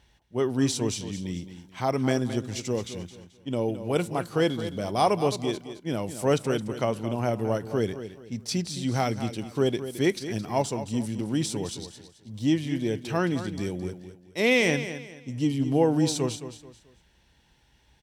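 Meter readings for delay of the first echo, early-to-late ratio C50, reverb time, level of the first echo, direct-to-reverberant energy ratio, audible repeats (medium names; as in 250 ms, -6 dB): 217 ms, no reverb, no reverb, -11.5 dB, no reverb, 3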